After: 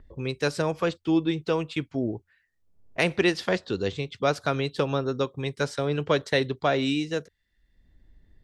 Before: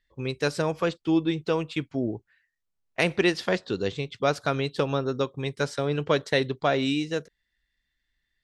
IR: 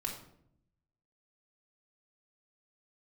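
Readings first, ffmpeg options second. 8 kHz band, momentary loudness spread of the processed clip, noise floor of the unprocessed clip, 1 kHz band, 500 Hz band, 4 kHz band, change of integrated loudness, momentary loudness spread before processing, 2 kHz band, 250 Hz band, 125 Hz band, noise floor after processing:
0.0 dB, 7 LU, -80 dBFS, 0.0 dB, 0.0 dB, 0.0 dB, 0.0 dB, 7 LU, 0.0 dB, 0.0 dB, 0.0 dB, -74 dBFS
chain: -filter_complex "[0:a]equalizer=f=86:t=o:w=0.21:g=8,acrossover=split=670|910[a][b][c];[a]acompressor=mode=upward:threshold=-33dB:ratio=2.5[d];[d][b][c]amix=inputs=3:normalize=0"

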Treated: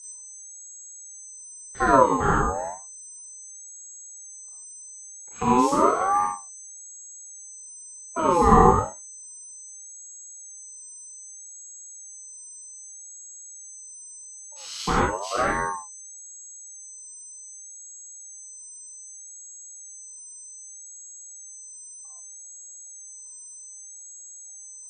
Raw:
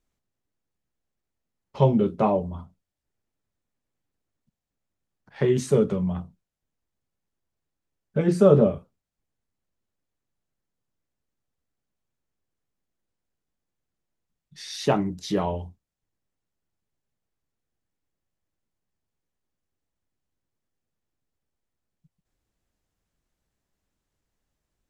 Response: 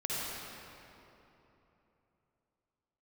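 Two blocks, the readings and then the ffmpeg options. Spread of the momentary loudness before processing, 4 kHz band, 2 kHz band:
18 LU, +1.0 dB, +12.0 dB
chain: -filter_complex "[0:a]aeval=exprs='val(0)+0.0141*sin(2*PI*7100*n/s)':c=same[a];[1:a]atrim=start_sample=2205,afade=t=out:st=0.31:d=0.01,atrim=end_sample=14112,asetrate=74970,aresample=44100[b];[a][b]afir=irnorm=-1:irlink=0,aeval=exprs='val(0)*sin(2*PI*810*n/s+810*0.25/0.64*sin(2*PI*0.64*n/s))':c=same,volume=4.5dB"

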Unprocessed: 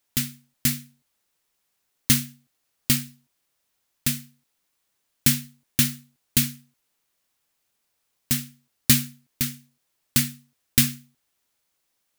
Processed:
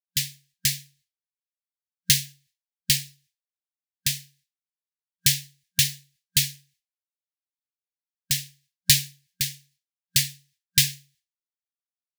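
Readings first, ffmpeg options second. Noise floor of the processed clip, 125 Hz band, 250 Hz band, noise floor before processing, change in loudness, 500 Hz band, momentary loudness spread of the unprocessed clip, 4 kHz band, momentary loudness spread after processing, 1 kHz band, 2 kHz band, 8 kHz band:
under -85 dBFS, -3.5 dB, under -10 dB, -75 dBFS, 0.0 dB, under -35 dB, 14 LU, +4.5 dB, 14 LU, under -40 dB, +0.5 dB, +1.5 dB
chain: -af "afftfilt=real='re*(1-between(b*sr/4096,180,1600))':imag='im*(1-between(b*sr/4096,180,1600))':win_size=4096:overlap=0.75,agate=range=-33dB:threshold=-56dB:ratio=3:detection=peak,equalizer=f=4.4k:t=o:w=2:g=8.5,volume=-3.5dB"

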